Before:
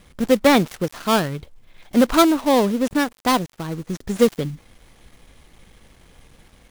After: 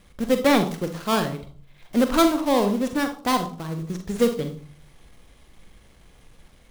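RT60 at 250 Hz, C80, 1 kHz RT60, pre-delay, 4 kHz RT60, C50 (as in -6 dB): 0.60 s, 15.5 dB, 0.50 s, 40 ms, 0.35 s, 10.5 dB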